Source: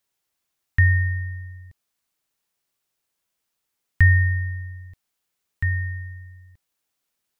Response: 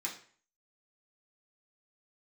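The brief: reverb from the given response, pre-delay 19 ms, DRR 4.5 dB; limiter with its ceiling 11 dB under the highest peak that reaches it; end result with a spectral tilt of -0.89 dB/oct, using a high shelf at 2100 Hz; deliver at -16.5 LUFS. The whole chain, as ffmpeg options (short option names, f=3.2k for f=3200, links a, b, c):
-filter_complex "[0:a]highshelf=f=2.1k:g=6.5,alimiter=limit=-15dB:level=0:latency=1,asplit=2[a][b];[1:a]atrim=start_sample=2205,adelay=19[c];[b][c]afir=irnorm=-1:irlink=0,volume=-6dB[d];[a][d]amix=inputs=2:normalize=0,volume=7.5dB"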